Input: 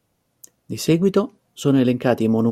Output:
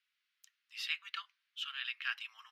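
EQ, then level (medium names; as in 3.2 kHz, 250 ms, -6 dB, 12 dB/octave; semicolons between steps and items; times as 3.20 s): Bessel high-pass 2.8 kHz, order 8; dynamic bell 6.3 kHz, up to -5 dB, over -49 dBFS, Q 2.1; distance through air 350 m; +6.0 dB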